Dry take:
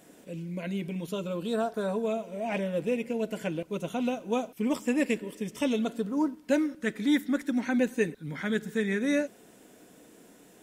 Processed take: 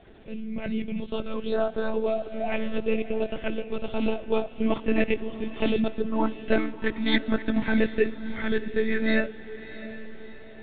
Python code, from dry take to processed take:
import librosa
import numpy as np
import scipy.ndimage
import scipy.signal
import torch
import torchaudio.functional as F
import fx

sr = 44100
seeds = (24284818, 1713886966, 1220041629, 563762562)

y = fx.lpc_monotone(x, sr, seeds[0], pitch_hz=220.0, order=16)
y = fx.echo_diffused(y, sr, ms=680, feedback_pct=46, wet_db=-14)
y = y * librosa.db_to_amplitude(4.0)